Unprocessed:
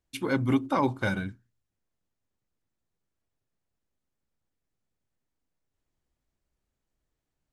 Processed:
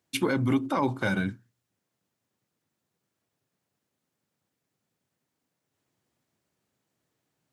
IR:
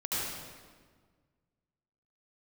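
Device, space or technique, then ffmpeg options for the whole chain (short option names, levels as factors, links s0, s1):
stacked limiters: -af "highpass=f=110:w=0.5412,highpass=f=110:w=1.3066,alimiter=limit=0.141:level=0:latency=1:release=28,alimiter=limit=0.0668:level=0:latency=1:release=240,volume=2.37"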